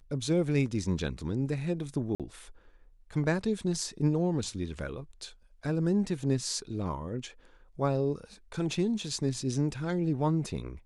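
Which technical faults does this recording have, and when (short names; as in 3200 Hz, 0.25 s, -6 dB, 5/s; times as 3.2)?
2.15–2.2 gap 47 ms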